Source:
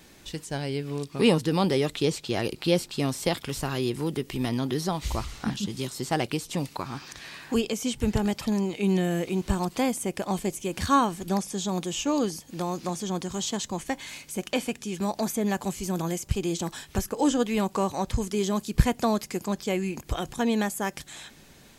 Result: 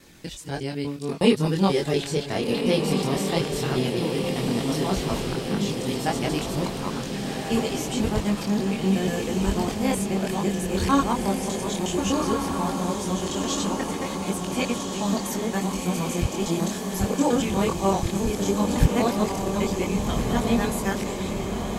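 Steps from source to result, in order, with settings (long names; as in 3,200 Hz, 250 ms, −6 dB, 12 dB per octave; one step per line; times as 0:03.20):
reversed piece by piece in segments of 121 ms
multi-voice chorus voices 2, 0.14 Hz, delay 23 ms, depth 2.6 ms
on a send: feedback delay with all-pass diffusion 1,488 ms, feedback 62%, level −4 dB
on the sum: level +4 dB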